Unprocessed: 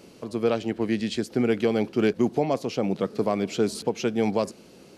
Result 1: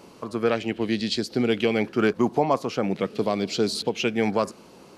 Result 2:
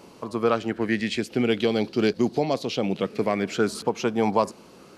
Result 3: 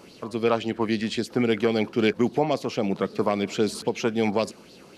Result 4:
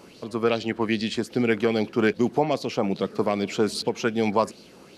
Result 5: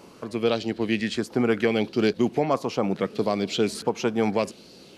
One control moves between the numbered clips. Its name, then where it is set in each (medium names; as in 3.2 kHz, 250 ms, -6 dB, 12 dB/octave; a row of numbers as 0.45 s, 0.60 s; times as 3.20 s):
sweeping bell, rate: 0.42 Hz, 0.23 Hz, 3.7 Hz, 2.5 Hz, 0.74 Hz